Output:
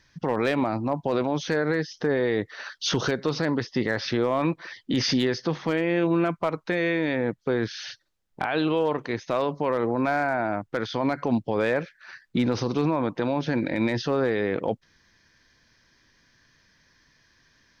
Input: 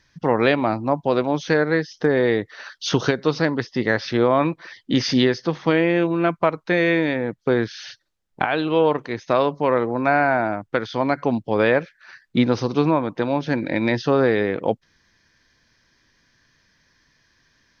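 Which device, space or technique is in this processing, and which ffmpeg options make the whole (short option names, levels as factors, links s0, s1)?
clipper into limiter: -af "asoftclip=type=hard:threshold=0.422,alimiter=limit=0.188:level=0:latency=1:release=25"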